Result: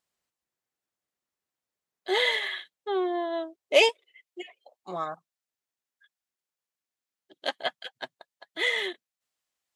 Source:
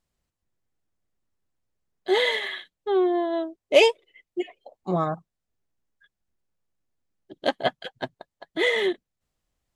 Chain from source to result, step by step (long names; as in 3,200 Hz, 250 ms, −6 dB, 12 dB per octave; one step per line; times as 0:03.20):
high-pass filter 700 Hz 6 dB per octave, from 0:03.89 1,500 Hz